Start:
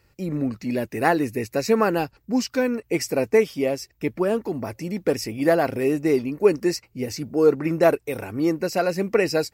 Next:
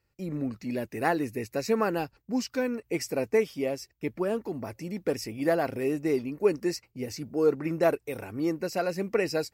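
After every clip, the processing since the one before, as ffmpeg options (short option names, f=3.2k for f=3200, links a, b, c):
-af "agate=range=-8dB:threshold=-44dB:ratio=16:detection=peak,volume=-6.5dB"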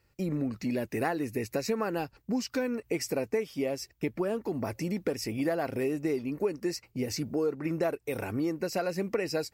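-af "acompressor=threshold=-35dB:ratio=4,volume=6.5dB"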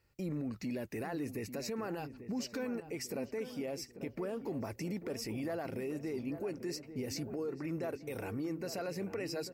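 -filter_complex "[0:a]alimiter=level_in=2.5dB:limit=-24dB:level=0:latency=1:release=18,volume=-2.5dB,asplit=2[a][b];[b]adelay=843,lowpass=f=1.4k:p=1,volume=-10.5dB,asplit=2[c][d];[d]adelay=843,lowpass=f=1.4k:p=1,volume=0.51,asplit=2[e][f];[f]adelay=843,lowpass=f=1.4k:p=1,volume=0.51,asplit=2[g][h];[h]adelay=843,lowpass=f=1.4k:p=1,volume=0.51,asplit=2[i][j];[j]adelay=843,lowpass=f=1.4k:p=1,volume=0.51,asplit=2[k][l];[l]adelay=843,lowpass=f=1.4k:p=1,volume=0.51[m];[a][c][e][g][i][k][m]amix=inputs=7:normalize=0,volume=-4.5dB"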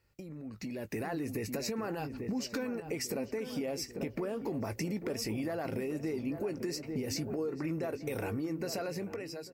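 -filter_complex "[0:a]acompressor=threshold=-44dB:ratio=6,asplit=2[a][b];[b]adelay=19,volume=-13.5dB[c];[a][c]amix=inputs=2:normalize=0,dynaudnorm=f=290:g=5:m=11dB"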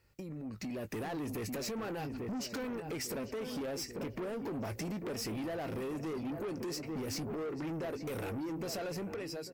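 -af "asoftclip=type=tanh:threshold=-38dB,volume=3dB"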